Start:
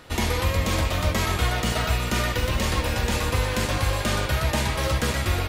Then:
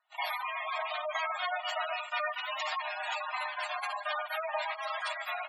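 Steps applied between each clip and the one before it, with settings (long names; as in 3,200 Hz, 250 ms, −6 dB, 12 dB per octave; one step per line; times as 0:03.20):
noise gate −24 dBFS, range −25 dB
Chebyshev high-pass filter 610 Hz, order 8
gate on every frequency bin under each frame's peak −10 dB strong
level −1.5 dB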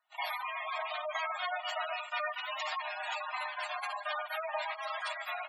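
every ending faded ahead of time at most 500 dB per second
level −2 dB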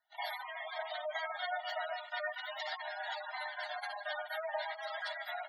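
phaser with its sweep stopped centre 1,700 Hz, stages 8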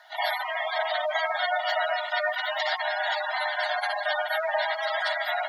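compressor on every frequency bin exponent 0.6
level +9 dB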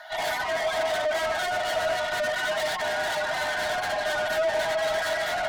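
tube saturation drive 36 dB, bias 0.3
hollow resonant body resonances 640/1,500 Hz, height 8 dB
level +8 dB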